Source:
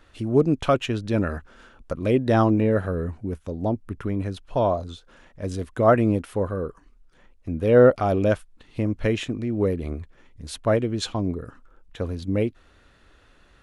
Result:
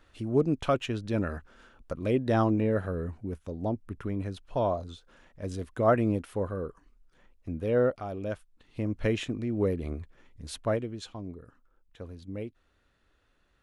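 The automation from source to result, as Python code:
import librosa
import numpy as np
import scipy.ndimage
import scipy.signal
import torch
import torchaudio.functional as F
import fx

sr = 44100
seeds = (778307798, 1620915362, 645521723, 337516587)

y = fx.gain(x, sr, db=fx.line((7.49, -6.0), (8.12, -15.0), (9.03, -4.5), (10.57, -4.5), (11.04, -14.0)))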